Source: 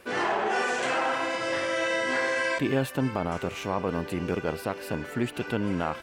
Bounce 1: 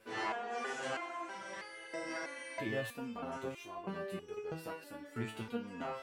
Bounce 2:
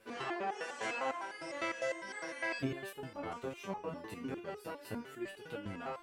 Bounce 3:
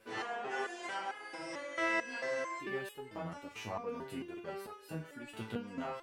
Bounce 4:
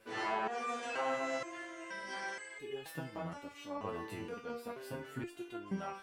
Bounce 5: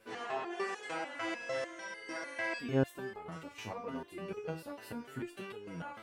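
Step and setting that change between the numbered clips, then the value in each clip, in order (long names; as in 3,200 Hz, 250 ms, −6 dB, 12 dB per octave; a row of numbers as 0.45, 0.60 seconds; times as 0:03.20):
step-sequenced resonator, speed: 3.1, 9.9, 4.5, 2.1, 6.7 Hertz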